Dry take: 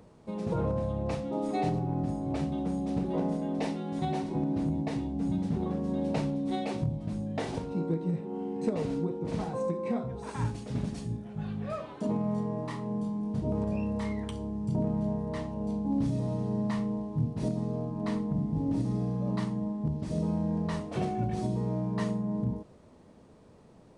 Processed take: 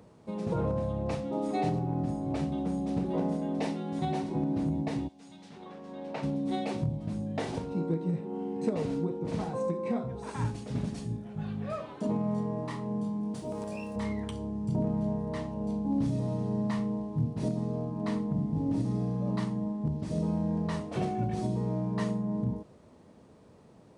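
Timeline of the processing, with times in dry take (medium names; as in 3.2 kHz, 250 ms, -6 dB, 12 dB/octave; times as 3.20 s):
5.07–6.22 s: band-pass filter 6.4 kHz -> 1.3 kHz, Q 0.61
13.34–13.96 s: RIAA curve recording
whole clip: high-pass 59 Hz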